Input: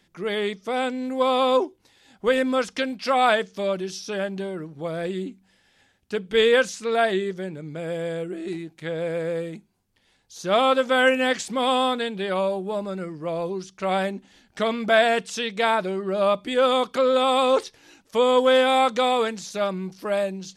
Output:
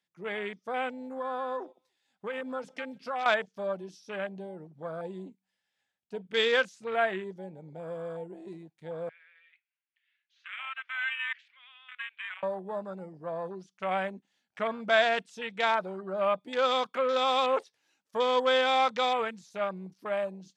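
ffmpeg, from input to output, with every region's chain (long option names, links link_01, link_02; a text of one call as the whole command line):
ffmpeg -i in.wav -filter_complex "[0:a]asettb=1/sr,asplit=3[link_01][link_02][link_03];[link_01]atrim=end=1.024[link_04];[link_02]atrim=start=1.02:end=3.26,asetpts=PTS-STARTPTS,afade=type=in:duration=0.004:curve=qsin,afade=type=out:start_time=2.236:duration=0.004:curve=qsin,acompressor=threshold=-23dB:ratio=6:attack=3.2:release=140:knee=1:detection=peak,aecho=1:1:147|294:0.0944|0.0302,atrim=end_sample=98784[link_05];[link_03]atrim=start=3.256[link_06];[link_04][link_05]acrossfade=duration=0.004:curve1=hsin:curve2=qsin[link_07];[link_07][link_06]acrossfade=duration=0.004:curve1=qsin:curve2=hsin,asettb=1/sr,asplit=3[link_08][link_09][link_10];[link_08]atrim=end=9.094[link_11];[link_09]atrim=start=9.09:end=12.43,asetpts=PTS-STARTPTS,afade=type=in:duration=0.004:curve=qsin,afade=type=out:start_time=3.336:duration=0.004:curve=qsin,equalizer=frequency=2400:width=0.55:gain=12.5,acompressor=threshold=-34dB:ratio=2:attack=3.2:release=140:knee=1:detection=peak,asuperpass=centerf=2100:order=4:qfactor=1.3[link_12];[link_10]atrim=start=12.426[link_13];[link_11][link_12]acrossfade=duration=0.004:curve1=hsin:curve2=qsin[link_14];[link_14][link_13]acrossfade=duration=0.004:curve1=qsin:curve2=hsin,afwtdn=0.0251,highpass=190,equalizer=frequency=320:width=1.1:gain=-10,volume=-3.5dB" out.wav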